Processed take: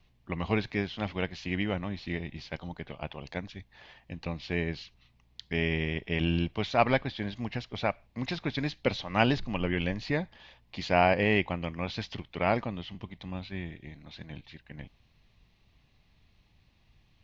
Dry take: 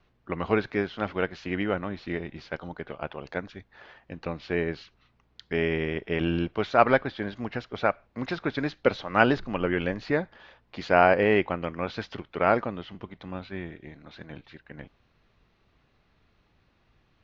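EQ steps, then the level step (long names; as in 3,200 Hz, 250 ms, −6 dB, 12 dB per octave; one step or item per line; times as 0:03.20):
parametric band 430 Hz −10.5 dB 1.8 octaves
parametric band 1,400 Hz −13 dB 0.65 octaves
+4.0 dB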